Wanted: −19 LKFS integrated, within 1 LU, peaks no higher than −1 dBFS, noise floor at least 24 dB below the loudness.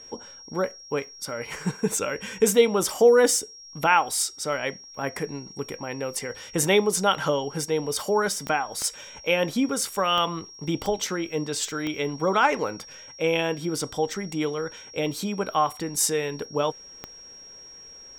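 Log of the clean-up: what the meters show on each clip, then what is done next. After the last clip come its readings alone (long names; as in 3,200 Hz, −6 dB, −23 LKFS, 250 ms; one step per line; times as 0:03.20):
number of clicks 6; interfering tone 5,600 Hz; level of the tone −43 dBFS; integrated loudness −25.0 LKFS; sample peak −6.5 dBFS; target loudness −19.0 LKFS
→ click removal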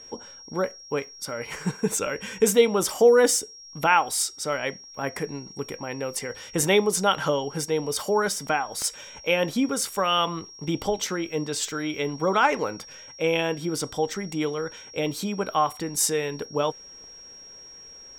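number of clicks 0; interfering tone 5,600 Hz; level of the tone −43 dBFS
→ notch filter 5,600 Hz, Q 30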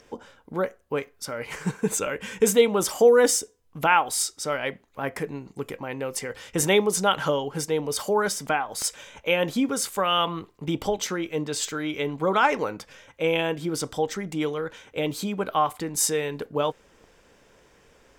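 interfering tone none found; integrated loudness −25.5 LKFS; sample peak −6.0 dBFS; target loudness −19.0 LKFS
→ level +6.5 dB
brickwall limiter −1 dBFS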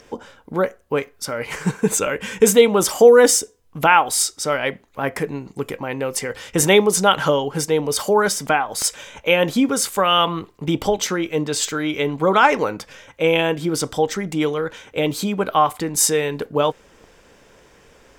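integrated loudness −19.0 LKFS; sample peak −1.0 dBFS; background noise floor −54 dBFS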